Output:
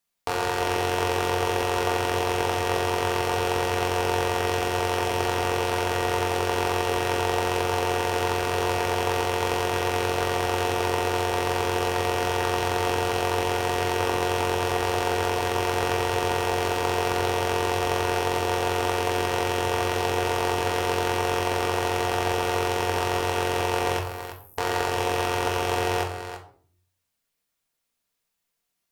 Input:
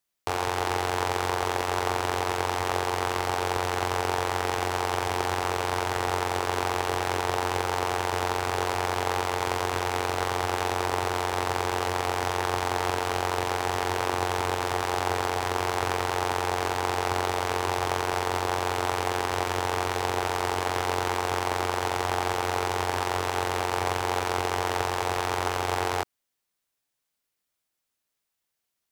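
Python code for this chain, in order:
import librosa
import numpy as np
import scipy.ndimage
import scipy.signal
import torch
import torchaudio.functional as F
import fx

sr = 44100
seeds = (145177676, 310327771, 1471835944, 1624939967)

y = fx.dmg_crackle(x, sr, seeds[0], per_s=310.0, level_db=-36.0, at=(16.37, 17.11), fade=0.02)
y = fx.cheby2_highpass(y, sr, hz=2900.0, order=4, stop_db=80, at=(23.99, 24.58))
y = y + 10.0 ** (-10.5 / 20.0) * np.pad(y, (int(333 * sr / 1000.0), 0))[:len(y)]
y = fx.room_shoebox(y, sr, seeds[1], volume_m3=500.0, walls='furnished', distance_m=1.7)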